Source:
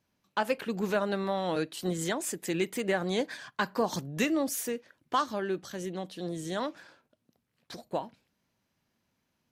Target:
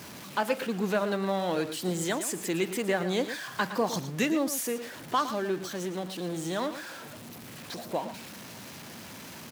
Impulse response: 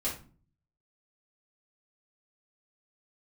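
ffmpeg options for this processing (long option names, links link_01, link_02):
-af "aeval=exprs='val(0)+0.5*0.0126*sgn(val(0))':channel_layout=same,highpass=110,aecho=1:1:113:0.266"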